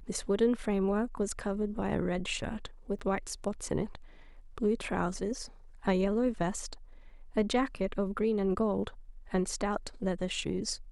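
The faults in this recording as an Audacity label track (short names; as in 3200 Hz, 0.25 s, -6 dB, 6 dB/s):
2.990000	3.000000	gap 7.4 ms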